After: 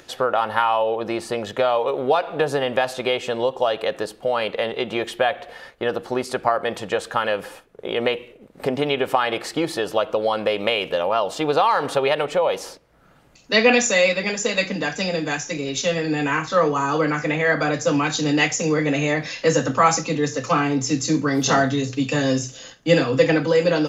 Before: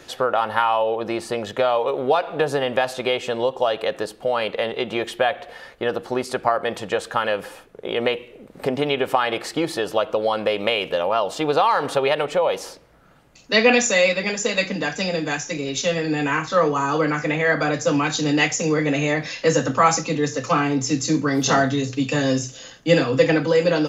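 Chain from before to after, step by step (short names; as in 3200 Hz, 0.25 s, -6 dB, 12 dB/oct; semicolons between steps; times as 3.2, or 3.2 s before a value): upward compressor, threshold -38 dBFS; gate -41 dBFS, range -7 dB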